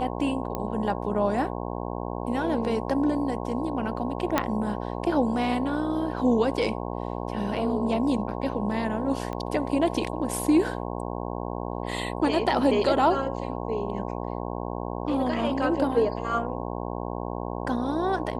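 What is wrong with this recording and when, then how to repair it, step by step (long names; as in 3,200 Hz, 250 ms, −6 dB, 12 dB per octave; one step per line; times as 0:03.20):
mains buzz 60 Hz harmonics 18 −32 dBFS
0:00.55: click −16 dBFS
0:04.38: click −7 dBFS
0:09.33: click −21 dBFS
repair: click removal
hum removal 60 Hz, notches 18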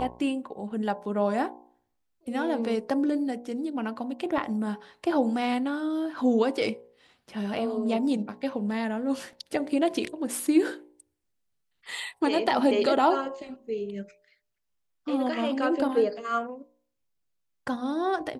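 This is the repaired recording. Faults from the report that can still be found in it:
0:04.38: click
0:09.33: click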